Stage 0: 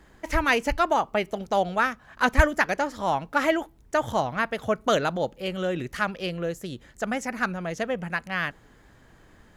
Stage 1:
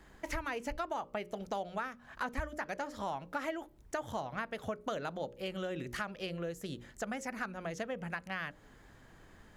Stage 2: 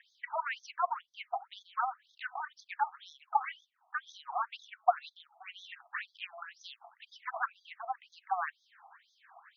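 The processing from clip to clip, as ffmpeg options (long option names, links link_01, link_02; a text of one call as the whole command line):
ffmpeg -i in.wav -filter_complex "[0:a]bandreject=frequency=60:width_type=h:width=6,bandreject=frequency=120:width_type=h:width=6,bandreject=frequency=180:width_type=h:width=6,bandreject=frequency=240:width_type=h:width=6,bandreject=frequency=300:width_type=h:width=6,bandreject=frequency=360:width_type=h:width=6,bandreject=frequency=420:width_type=h:width=6,bandreject=frequency=480:width_type=h:width=6,bandreject=frequency=540:width_type=h:width=6,bandreject=frequency=600:width_type=h:width=6,acrossover=split=1500[link_01][link_02];[link_02]alimiter=limit=-21.5dB:level=0:latency=1:release=103[link_03];[link_01][link_03]amix=inputs=2:normalize=0,acompressor=threshold=-33dB:ratio=4,volume=-3dB" out.wav
ffmpeg -i in.wav -af "aphaser=in_gain=1:out_gain=1:delay=4.1:decay=0.47:speed=1.9:type=sinusoidal,highpass=frequency=690:width_type=q:width=4.9,afftfilt=real='re*between(b*sr/1024,910*pow(4700/910,0.5+0.5*sin(2*PI*2*pts/sr))/1.41,910*pow(4700/910,0.5+0.5*sin(2*PI*2*pts/sr))*1.41)':imag='im*between(b*sr/1024,910*pow(4700/910,0.5+0.5*sin(2*PI*2*pts/sr))/1.41,910*pow(4700/910,0.5+0.5*sin(2*PI*2*pts/sr))*1.41)':win_size=1024:overlap=0.75,volume=3.5dB" out.wav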